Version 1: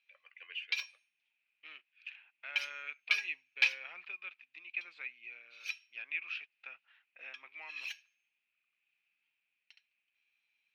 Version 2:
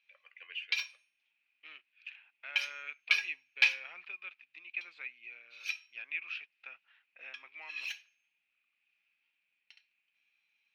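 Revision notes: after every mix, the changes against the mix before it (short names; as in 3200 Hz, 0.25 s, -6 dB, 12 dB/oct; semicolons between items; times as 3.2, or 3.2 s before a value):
reverb: on, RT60 0.40 s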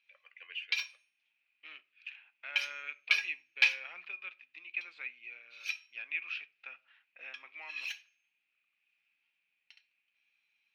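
second voice: send on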